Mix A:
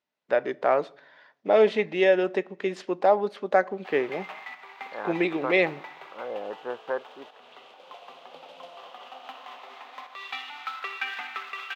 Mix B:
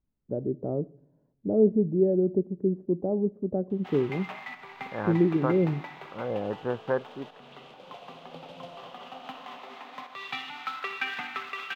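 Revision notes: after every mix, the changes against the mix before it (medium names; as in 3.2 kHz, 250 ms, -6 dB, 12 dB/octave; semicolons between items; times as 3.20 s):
first voice: add four-pole ladder low-pass 510 Hz, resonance 25%; master: remove high-pass 480 Hz 12 dB/octave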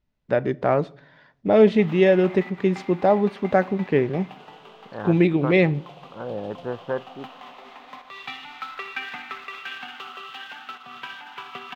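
first voice: remove four-pole ladder low-pass 510 Hz, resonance 25%; background: entry -2.05 s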